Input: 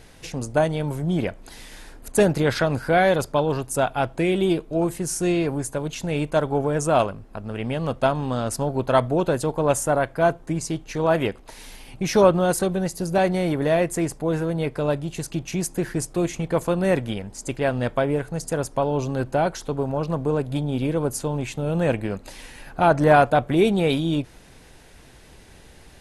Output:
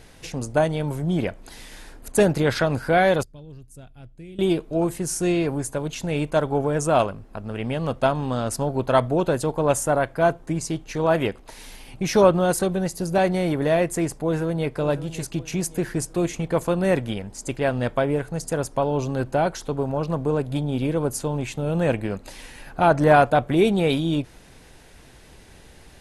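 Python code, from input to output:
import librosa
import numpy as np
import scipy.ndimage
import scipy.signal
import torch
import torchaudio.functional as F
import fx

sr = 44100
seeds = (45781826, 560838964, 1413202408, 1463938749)

y = fx.tone_stack(x, sr, knobs='10-0-1', at=(3.23, 4.39))
y = fx.echo_throw(y, sr, start_s=14.24, length_s=0.49, ms=560, feedback_pct=40, wet_db=-13.5)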